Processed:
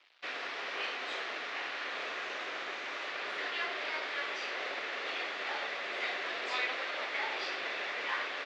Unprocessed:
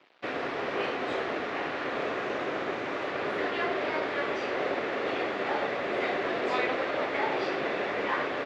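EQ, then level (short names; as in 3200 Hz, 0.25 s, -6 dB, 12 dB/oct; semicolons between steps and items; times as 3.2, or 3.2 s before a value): band-pass 6500 Hz, Q 0.62; air absorption 51 m; +5.5 dB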